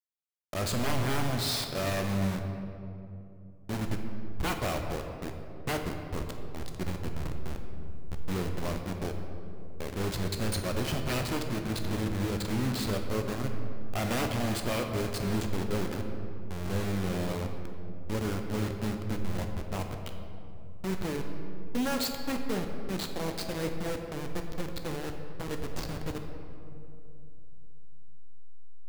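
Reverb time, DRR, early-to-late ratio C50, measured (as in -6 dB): 2.9 s, 4.0 dB, 5.5 dB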